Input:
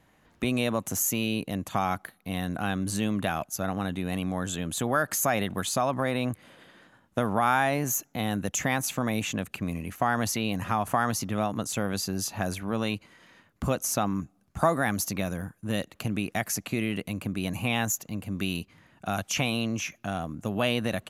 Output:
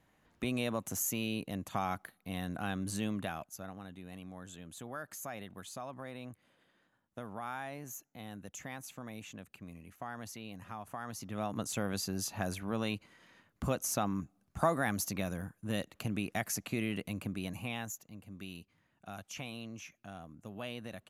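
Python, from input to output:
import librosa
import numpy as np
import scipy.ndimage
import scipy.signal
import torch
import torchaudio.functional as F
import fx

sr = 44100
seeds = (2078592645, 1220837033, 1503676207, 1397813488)

y = fx.gain(x, sr, db=fx.line((3.09, -7.5), (3.82, -17.5), (10.99, -17.5), (11.58, -6.0), (17.23, -6.0), (18.06, -16.0)))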